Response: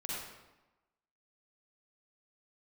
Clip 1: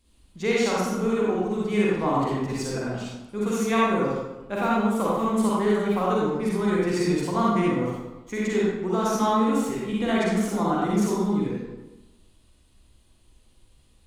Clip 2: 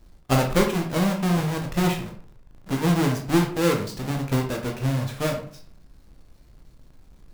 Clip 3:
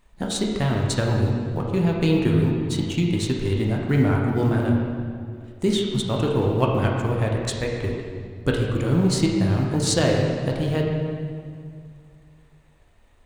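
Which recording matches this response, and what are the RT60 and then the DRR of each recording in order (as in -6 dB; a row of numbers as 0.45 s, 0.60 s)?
1; 1.1 s, 0.45 s, 2.1 s; -6.5 dB, 1.5 dB, -1.0 dB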